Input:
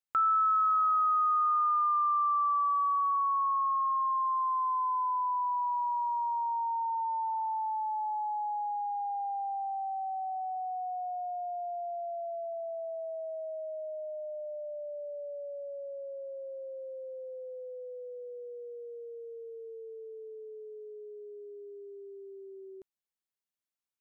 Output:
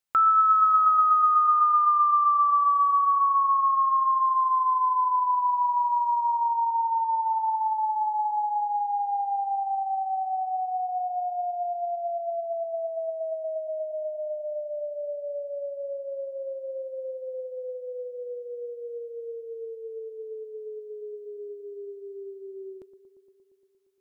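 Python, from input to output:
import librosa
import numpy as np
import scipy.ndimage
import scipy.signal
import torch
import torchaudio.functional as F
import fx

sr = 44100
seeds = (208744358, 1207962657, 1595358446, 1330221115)

y = fx.echo_bbd(x, sr, ms=116, stages=1024, feedback_pct=78, wet_db=-14.0)
y = y * librosa.db_to_amplitude(6.5)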